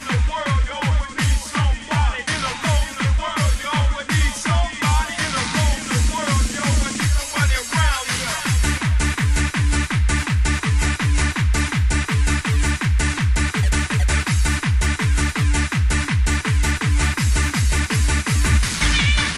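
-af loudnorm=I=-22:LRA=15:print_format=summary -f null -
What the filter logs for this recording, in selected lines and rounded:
Input Integrated:    -19.5 LUFS
Input True Peak:      -6.2 dBTP
Input LRA:             1.8 LU
Input Threshold:     -29.5 LUFS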